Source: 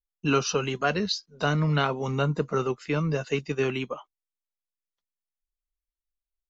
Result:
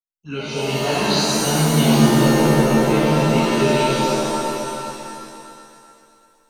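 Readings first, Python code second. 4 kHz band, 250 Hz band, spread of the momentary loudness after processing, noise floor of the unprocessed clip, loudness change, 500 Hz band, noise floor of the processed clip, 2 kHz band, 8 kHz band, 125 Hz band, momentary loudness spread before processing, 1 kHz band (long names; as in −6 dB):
+11.0 dB, +13.0 dB, 16 LU, below −85 dBFS, +10.0 dB, +9.5 dB, −58 dBFS, +7.0 dB, can't be measured, +8.5 dB, 5 LU, +10.5 dB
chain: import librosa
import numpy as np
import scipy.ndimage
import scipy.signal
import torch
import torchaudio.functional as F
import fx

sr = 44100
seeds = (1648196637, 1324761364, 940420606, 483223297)

y = fx.fade_in_head(x, sr, length_s=0.8)
y = fx.high_shelf(y, sr, hz=4100.0, db=8.0)
y = fx.env_phaser(y, sr, low_hz=280.0, high_hz=1300.0, full_db=-24.5)
y = fx.echo_opening(y, sr, ms=126, hz=200, octaves=1, feedback_pct=70, wet_db=-3)
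y = fx.rev_shimmer(y, sr, seeds[0], rt60_s=2.2, semitones=7, shimmer_db=-2, drr_db=-9.5)
y = y * librosa.db_to_amplitude(-2.5)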